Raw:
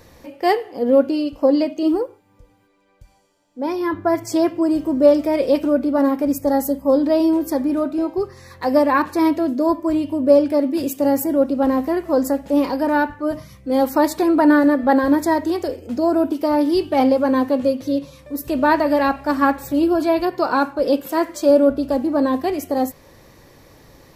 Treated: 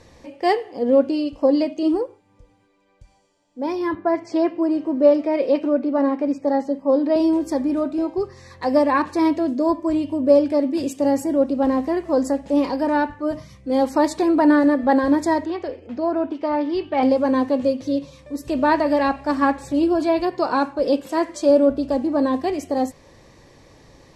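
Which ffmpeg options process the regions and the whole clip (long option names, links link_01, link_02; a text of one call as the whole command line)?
ffmpeg -i in.wav -filter_complex "[0:a]asettb=1/sr,asplit=3[link_01][link_02][link_03];[link_01]atrim=end=3.954[link_04];[link_02]atrim=start=3.95:end=7.16,asetpts=PTS-STARTPTS,afade=type=in:duration=0.004:curve=qsin,afade=type=out:start_time=3.206:duration=0.004:curve=qsin,bandreject=frequency=3400:width=11,acrossover=split=6600[link_05][link_06];[link_06]acompressor=threshold=-43dB:ratio=4:attack=1:release=60[link_07];[link_05][link_07]amix=inputs=2:normalize=0,acrossover=split=180 4400:gain=0.0891 1 0.158[link_08][link_09][link_10];[link_08][link_09][link_10]amix=inputs=3:normalize=0[link_11];[link_03]atrim=start=7.156[link_12];[link_04][link_11]acrossfade=duration=0.004:curve1=hsin:curve2=qsin[link_13];[link_13][link_12]acrossfade=duration=0.004:curve1=qsin:curve2=hsin,asettb=1/sr,asplit=3[link_14][link_15][link_16];[link_14]atrim=end=15.454[link_17];[link_15]atrim=start=15.45:end=17.03,asetpts=PTS-STARTPTS,afade=type=in:duration=0.004:curve=qsin,afade=type=out:start_time=1.576:duration=0.004:curve=qsin,lowpass=2200,tiltshelf=frequency=910:gain=-5.5[link_18];[link_16]atrim=start=17.026[link_19];[link_17][link_18]acrossfade=duration=0.004:curve1=hsin:curve2=qsin[link_20];[link_20][link_19]acrossfade=duration=0.004:curve1=qsin:curve2=hsin,lowpass=frequency=9100:width=0.5412,lowpass=frequency=9100:width=1.3066,equalizer=frequency=1400:width=6.3:gain=-5.5,volume=-1.5dB" out.wav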